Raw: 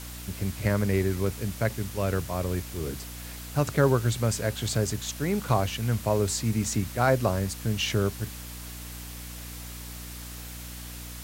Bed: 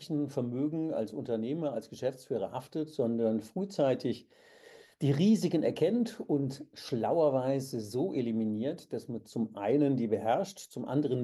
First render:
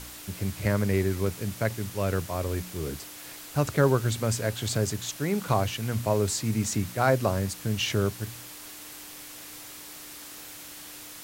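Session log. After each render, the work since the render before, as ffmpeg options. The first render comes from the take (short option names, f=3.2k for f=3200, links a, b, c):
-af "bandreject=f=60:t=h:w=4,bandreject=f=120:t=h:w=4,bandreject=f=180:t=h:w=4,bandreject=f=240:t=h:w=4"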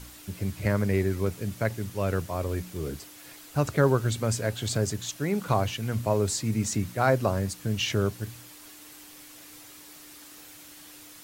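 -af "afftdn=nr=6:nf=-44"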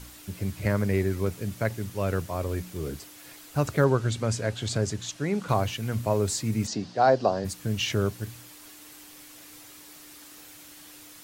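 -filter_complex "[0:a]asettb=1/sr,asplit=3[a][b][c];[a]atrim=end=3.844[d];[b]atrim=start=3.84:end=5.49,asetpts=PTS-STARTPTS,afade=t=in:d=0.004:c=qsin,afade=t=out:st=1.646:d=0.004:c=qsin,lowpass=8k[e];[c]atrim=start=5.486[f];[d][e]acrossfade=d=0.004:c1=hsin:c2=qsin[g];[g][f]acrossfade=d=0.004:c1=qsin:c2=hsin,asplit=3[h][i][j];[h]afade=t=out:st=6.66:d=0.02[k];[i]highpass=190,equalizer=f=450:t=q:w=4:g=3,equalizer=f=730:t=q:w=4:g=8,equalizer=f=1.3k:t=q:w=4:g=-4,equalizer=f=2.2k:t=q:w=4:g=-9,equalizer=f=4.7k:t=q:w=4:g=8,lowpass=f=5.9k:w=0.5412,lowpass=f=5.9k:w=1.3066,afade=t=in:st=6.66:d=0.02,afade=t=out:st=7.44:d=0.02[l];[j]afade=t=in:st=7.44:d=0.02[m];[k][l][m]amix=inputs=3:normalize=0"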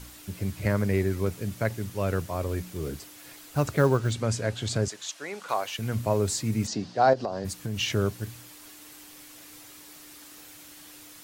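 -filter_complex "[0:a]asettb=1/sr,asplit=3[a][b][c];[a]atrim=end=2.824[d];[b]atrim=start=2.82:end=4.14,asetpts=PTS-STARTPTS,afade=t=in:d=0.004:c=qsin,afade=t=out:st=1.316:d=0.004:c=qsin,acrusher=bits=7:mode=log:mix=0:aa=0.000001[e];[c]atrim=start=4.136[f];[d][e]acrossfade=d=0.004:c1=hsin:c2=qsin[g];[g][f]acrossfade=d=0.004:c1=qsin:c2=hsin,asettb=1/sr,asplit=3[h][i][j];[h]atrim=end=4.884[k];[i]atrim=start=4.88:end=5.79,asetpts=PTS-STARTPTS,afade=t=in:d=0.004:c=qsin,afade=t=out:st=0.906:d=0.004:c=qsin,highpass=600[l];[j]atrim=start=5.786[m];[k][l]acrossfade=d=0.004:c1=hsin:c2=qsin[n];[n][m]acrossfade=d=0.004:c1=qsin:c2=hsin,asettb=1/sr,asplit=3[o][p][q];[o]atrim=end=7.134[r];[p]atrim=start=7.13:end=7.8,asetpts=PTS-STARTPTS,afade=t=in:d=0.004:c=qsin,afade=t=out:st=0.666:d=0.004:c=qsin,acompressor=threshold=-26dB:ratio=6:attack=3.2:release=140:knee=1:detection=peak[s];[q]atrim=start=7.796[t];[r][s]acrossfade=d=0.004:c1=hsin:c2=qsin[u];[u][t]acrossfade=d=0.004:c1=qsin:c2=hsin"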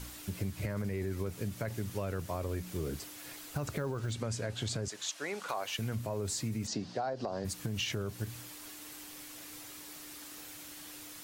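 -af "alimiter=limit=-19.5dB:level=0:latency=1:release=14,acompressor=threshold=-32dB:ratio=6"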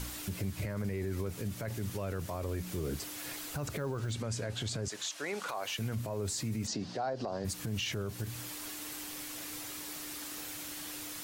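-filter_complex "[0:a]asplit=2[a][b];[b]acompressor=threshold=-43dB:ratio=6,volume=-0.5dB[c];[a][c]amix=inputs=2:normalize=0,alimiter=level_in=3dB:limit=-24dB:level=0:latency=1:release=28,volume=-3dB"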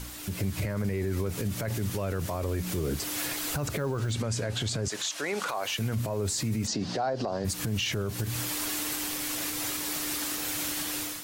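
-af "dynaudnorm=f=180:g=5:m=12dB,alimiter=limit=-21.5dB:level=0:latency=1:release=167"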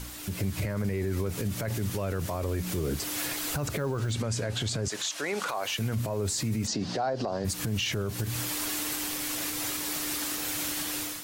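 -af anull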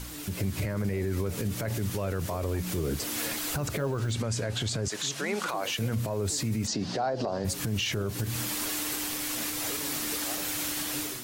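-filter_complex "[1:a]volume=-15.5dB[a];[0:a][a]amix=inputs=2:normalize=0"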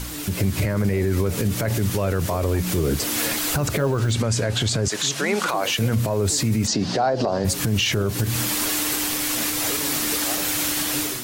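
-af "volume=8.5dB"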